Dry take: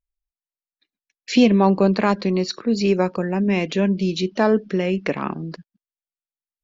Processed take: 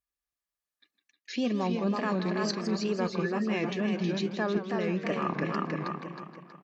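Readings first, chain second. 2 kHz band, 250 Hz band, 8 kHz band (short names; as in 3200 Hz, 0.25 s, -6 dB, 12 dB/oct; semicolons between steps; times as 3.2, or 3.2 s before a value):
-6.5 dB, -10.0 dB, n/a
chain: HPF 91 Hz; feedback echo 0.321 s, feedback 35%, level -6 dB; wow and flutter 120 cents; small resonant body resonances 1200/1700 Hz, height 11 dB; reverse; compressor 6:1, threshold -29 dBFS, peak gain reduction 18.5 dB; reverse; warbling echo 0.161 s, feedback 58%, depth 145 cents, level -11.5 dB; gain +1.5 dB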